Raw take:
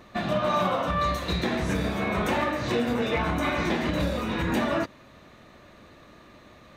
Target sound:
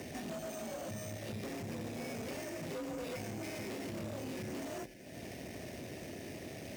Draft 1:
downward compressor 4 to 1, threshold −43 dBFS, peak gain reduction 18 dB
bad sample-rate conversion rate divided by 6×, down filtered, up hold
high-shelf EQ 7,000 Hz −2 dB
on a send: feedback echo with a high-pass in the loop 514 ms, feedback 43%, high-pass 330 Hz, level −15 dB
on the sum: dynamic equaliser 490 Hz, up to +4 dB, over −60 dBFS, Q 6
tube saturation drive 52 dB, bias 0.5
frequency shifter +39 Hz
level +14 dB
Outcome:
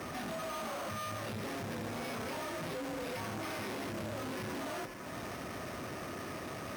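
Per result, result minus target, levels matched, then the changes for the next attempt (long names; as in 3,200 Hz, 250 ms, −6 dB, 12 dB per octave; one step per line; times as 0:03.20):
downward compressor: peak gain reduction −7 dB; 1,000 Hz band +6.0 dB
change: downward compressor 4 to 1, threshold −52 dBFS, peak gain reduction 24.5 dB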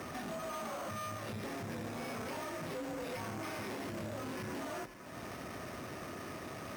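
1,000 Hz band +6.0 dB
add after dynamic equaliser: Butterworth band-reject 1,100 Hz, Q 0.91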